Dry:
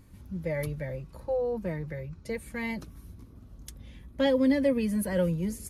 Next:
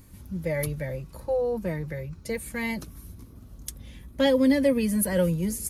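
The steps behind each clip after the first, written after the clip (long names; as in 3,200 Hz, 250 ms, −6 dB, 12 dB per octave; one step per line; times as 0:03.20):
high-shelf EQ 6,100 Hz +10.5 dB
level +3 dB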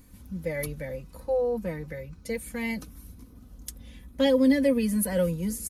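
comb filter 4 ms, depth 45%
level −3 dB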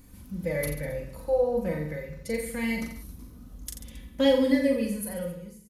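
fade-out on the ending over 1.60 s
reverse bouncing-ball delay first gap 40 ms, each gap 1.15×, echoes 5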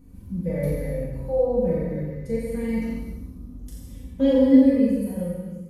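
tilt shelving filter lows +8.5 dB, about 780 Hz
reverb whose tail is shaped and stops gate 420 ms falling, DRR −5 dB
level −7 dB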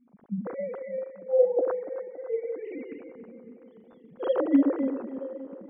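three sine waves on the formant tracks
tape delay 283 ms, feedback 70%, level −13 dB, low-pass 2,700 Hz
level −6.5 dB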